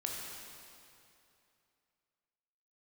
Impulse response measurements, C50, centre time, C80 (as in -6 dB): 0.0 dB, 0.123 s, 1.0 dB